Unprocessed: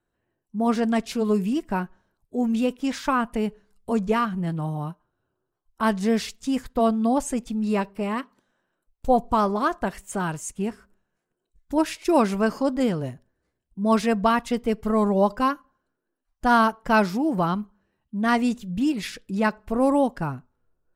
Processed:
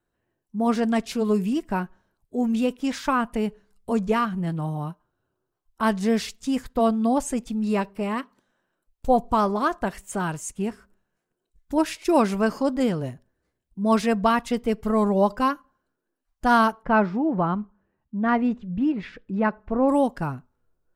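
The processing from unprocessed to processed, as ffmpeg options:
ffmpeg -i in.wav -filter_complex "[0:a]asplit=3[link_01][link_02][link_03];[link_01]afade=type=out:start_time=16.82:duration=0.02[link_04];[link_02]lowpass=1800,afade=type=in:start_time=16.82:duration=0.02,afade=type=out:start_time=19.88:duration=0.02[link_05];[link_03]afade=type=in:start_time=19.88:duration=0.02[link_06];[link_04][link_05][link_06]amix=inputs=3:normalize=0" out.wav

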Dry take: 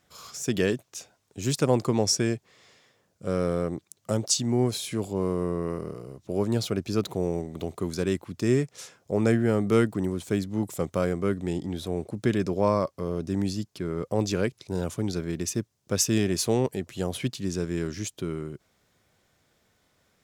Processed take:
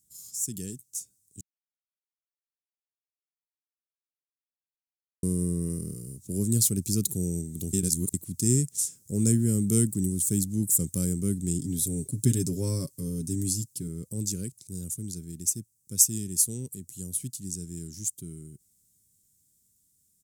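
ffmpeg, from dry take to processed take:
ffmpeg -i in.wav -filter_complex "[0:a]asettb=1/sr,asplit=3[link_01][link_02][link_03];[link_01]atrim=end=11.594[link_04];[link_02]atrim=start=11.59:end=13.88,asetpts=PTS-STARTPTS,afade=type=in:duration=0.004:curve=qsin,afade=type=out:start_time=2.286:duration=0.004:curve=qsin,aecho=1:1:7.4:0.65,atrim=end_sample=100989[link_05];[link_03]atrim=start=13.876[link_06];[link_04][link_05]acrossfade=duration=0.004:curve1=hsin:curve2=qsin[link_07];[link_07][link_06]acrossfade=duration=0.004:curve1=qsin:curve2=hsin,asplit=5[link_08][link_09][link_10][link_11][link_12];[link_08]atrim=end=1.41,asetpts=PTS-STARTPTS,afade=type=out:start_time=1.406:duration=0.004:curve=hsin[link_13];[link_09]atrim=start=1.41:end=5.23,asetpts=PTS-STARTPTS,volume=0[link_14];[link_10]atrim=start=5.23:end=7.732,asetpts=PTS-STARTPTS,afade=type=in:duration=0.004:curve=hsin[link_15];[link_11]atrim=start=7.728:end=8.142,asetpts=PTS-STARTPTS,areverse[link_16];[link_12]atrim=start=8.138[link_17];[link_13][link_14][link_15]concat=n=3:v=0:a=1[link_18];[link_18][link_16]acrossfade=duration=0.004:curve1=hsin:curve2=hsin[link_19];[link_19][link_17]acrossfade=duration=0.004:curve1=hsin:curve2=hsin,firequalizer=gain_entry='entry(180,0);entry(720,-30);entry(1600,-23);entry(8200,15)':delay=0.05:min_phase=1,dynaudnorm=framelen=670:gausssize=7:maxgain=14dB,equalizer=frequency=6600:width=0.44:gain=4,volume=-8dB" out.wav

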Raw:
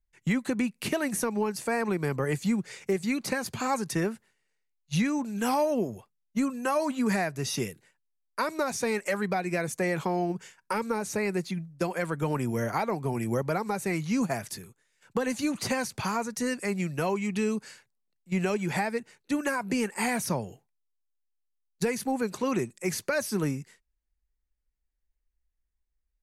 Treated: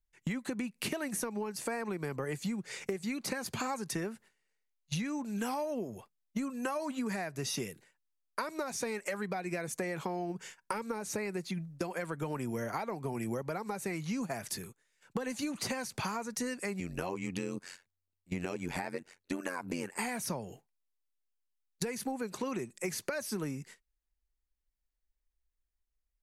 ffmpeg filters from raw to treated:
ffmpeg -i in.wav -filter_complex "[0:a]asettb=1/sr,asplit=3[link_01][link_02][link_03];[link_01]atrim=end=16.804[link_04];[link_02]atrim=start=16.8:end=19.99,asetpts=PTS-STARTPTS,afade=type=in:duration=0.004:curve=qsin,afade=type=out:start_time=3.186:duration=0.004:curve=qsin,tremolo=f=90:d=0.947[link_05];[link_03]atrim=start=19.986[link_06];[link_04][link_05]acrossfade=duration=0.004:curve1=hsin:curve2=qsin[link_07];[link_07][link_06]acrossfade=duration=0.004:curve1=qsin:curve2=hsin,equalizer=frequency=94:width=0.88:gain=-4,agate=range=-7dB:threshold=-51dB:ratio=16:detection=peak,acompressor=threshold=-36dB:ratio=10,volume=3.5dB" out.wav

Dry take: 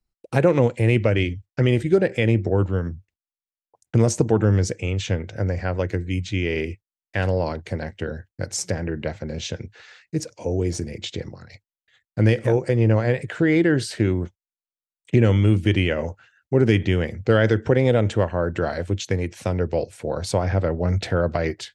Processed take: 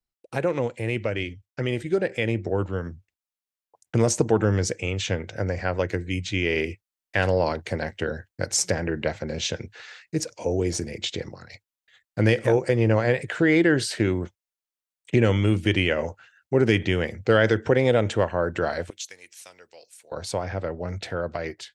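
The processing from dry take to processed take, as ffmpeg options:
ffmpeg -i in.wav -filter_complex "[0:a]asettb=1/sr,asplit=3[link_01][link_02][link_03];[link_01]atrim=end=18.904[link_04];[link_02]atrim=start=18.9:end=20.12,asetpts=PTS-STARTPTS,afade=type=in:duration=0.004:curve=qsin,afade=type=out:start_time=1.216:duration=0.004:curve=qsin,aderivative[link_05];[link_03]atrim=start=20.116[link_06];[link_04][link_05]acrossfade=duration=0.004:curve1=hsin:curve2=qsin[link_07];[link_07][link_06]acrossfade=duration=0.004:curve1=qsin:curve2=hsin,lowshelf=frequency=310:gain=-8,dynaudnorm=framelen=240:gausssize=21:maxgain=11.5dB,volume=-4.5dB" out.wav

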